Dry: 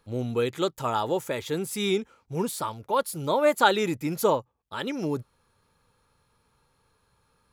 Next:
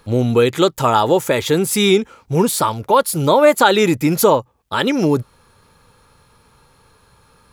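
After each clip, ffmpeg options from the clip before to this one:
ffmpeg -i in.wav -filter_complex "[0:a]asplit=2[link_01][link_02];[link_02]acompressor=threshold=-30dB:ratio=6,volume=0.5dB[link_03];[link_01][link_03]amix=inputs=2:normalize=0,alimiter=level_in=10dB:limit=-1dB:release=50:level=0:latency=1,volume=-1dB" out.wav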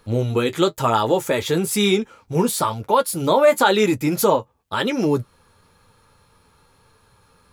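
ffmpeg -i in.wav -af "flanger=delay=8.8:depth=3:regen=-40:speed=1:shape=sinusoidal" out.wav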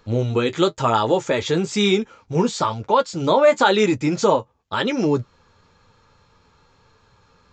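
ffmpeg -i in.wav -af "aresample=16000,aresample=44100" out.wav

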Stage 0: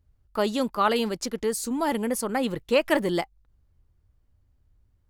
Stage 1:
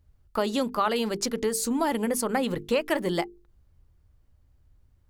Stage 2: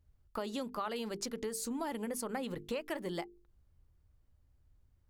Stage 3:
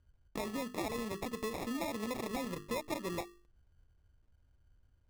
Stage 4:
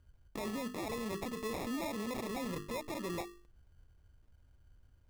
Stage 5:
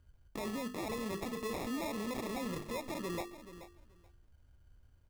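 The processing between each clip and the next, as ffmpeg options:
ffmpeg -i in.wav -af "acompressor=threshold=-26dB:ratio=4,bandreject=frequency=50:width_type=h:width=6,bandreject=frequency=100:width_type=h:width=6,bandreject=frequency=150:width_type=h:width=6,bandreject=frequency=200:width_type=h:width=6,bandreject=frequency=250:width_type=h:width=6,bandreject=frequency=300:width_type=h:width=6,bandreject=frequency=350:width_type=h:width=6,bandreject=frequency=400:width_type=h:width=6,bandreject=frequency=450:width_type=h:width=6,volume=4dB" out.wav
ffmpeg -i in.wav -af "acompressor=threshold=-31dB:ratio=2,volume=-7dB" out.wav
ffmpeg -i in.wav -af "acrusher=samples=29:mix=1:aa=0.000001" out.wav
ffmpeg -i in.wav -af "alimiter=level_in=13dB:limit=-24dB:level=0:latency=1:release=22,volume=-13dB,volume=4.5dB" out.wav
ffmpeg -i in.wav -af "aecho=1:1:430|860:0.224|0.0358" out.wav

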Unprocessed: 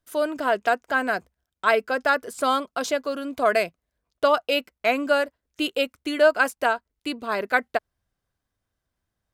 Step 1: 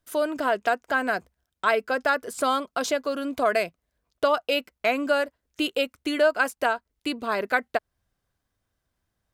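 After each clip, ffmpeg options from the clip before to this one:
ffmpeg -i in.wav -af "acompressor=threshold=-29dB:ratio=1.5,volume=2.5dB" out.wav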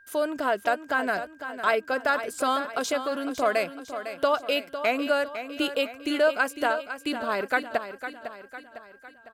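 ffmpeg -i in.wav -af "aeval=exprs='val(0)+0.00282*sin(2*PI*1600*n/s)':channel_layout=same,aecho=1:1:504|1008|1512|2016|2520:0.299|0.146|0.0717|0.0351|0.0172,volume=-1.5dB" out.wav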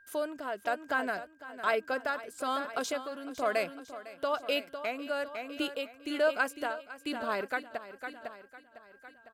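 ffmpeg -i in.wav -af "tremolo=f=1.1:d=0.56,volume=-4.5dB" out.wav

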